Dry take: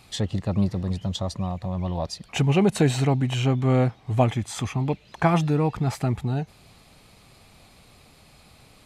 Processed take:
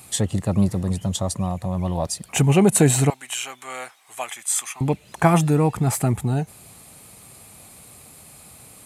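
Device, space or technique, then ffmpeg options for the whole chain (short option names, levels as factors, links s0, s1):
budget condenser microphone: -filter_complex "[0:a]highpass=71,highshelf=f=6500:t=q:w=1.5:g=12,asettb=1/sr,asplit=3[s0][s1][s2];[s0]atrim=end=3.104[s3];[s1]atrim=start=3.1:end=4.81,asetpts=PTS-STARTPTS,afade=t=in:d=0.004:c=qsin,afade=t=out:st=1.706:d=0.004:c=qsin,highpass=1400[s4];[s2]atrim=start=4.806[s5];[s3][s4]acrossfade=d=0.004:c1=hsin:c2=qsin[s6];[s6][s5]acrossfade=d=0.004:c1=qsin:c2=hsin,volume=1.58"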